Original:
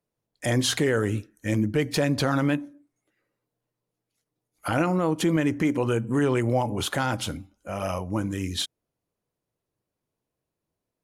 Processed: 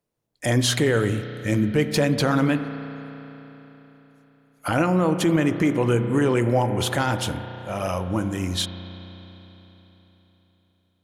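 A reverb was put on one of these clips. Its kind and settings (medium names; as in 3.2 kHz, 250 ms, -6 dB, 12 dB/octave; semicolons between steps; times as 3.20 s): spring tank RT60 3.9 s, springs 33 ms, chirp 60 ms, DRR 9.5 dB; trim +2.5 dB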